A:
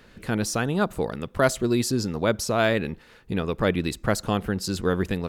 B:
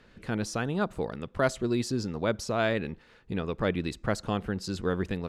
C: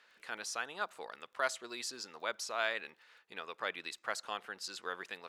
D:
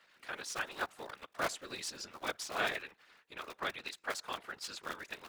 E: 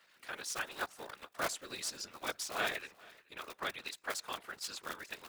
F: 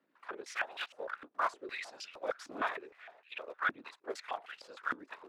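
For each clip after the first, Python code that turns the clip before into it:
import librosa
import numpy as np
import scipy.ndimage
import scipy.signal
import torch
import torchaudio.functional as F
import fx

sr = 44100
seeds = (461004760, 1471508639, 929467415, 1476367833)

y1 = fx.air_absorb(x, sr, metres=52.0)
y1 = y1 * 10.0 ** (-5.0 / 20.0)
y2 = scipy.signal.sosfilt(scipy.signal.butter(2, 1000.0, 'highpass', fs=sr, output='sos'), y1)
y2 = fx.dmg_crackle(y2, sr, seeds[0], per_s=21.0, level_db=-54.0)
y2 = y2 * 10.0 ** (-2.0 / 20.0)
y3 = fx.cycle_switch(y2, sr, every=3, mode='muted')
y3 = fx.whisperise(y3, sr, seeds[1])
y3 = y3 * 10.0 ** (1.0 / 20.0)
y4 = fx.high_shelf(y3, sr, hz=6800.0, db=8.5)
y4 = y4 + 10.0 ** (-23.0 / 20.0) * np.pad(y4, (int(429 * sr / 1000.0), 0))[:len(y4)]
y4 = y4 * 10.0 ** (-1.5 / 20.0)
y5 = fx.filter_held_bandpass(y4, sr, hz=6.5, low_hz=280.0, high_hz=2800.0)
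y5 = y5 * 10.0 ** (11.5 / 20.0)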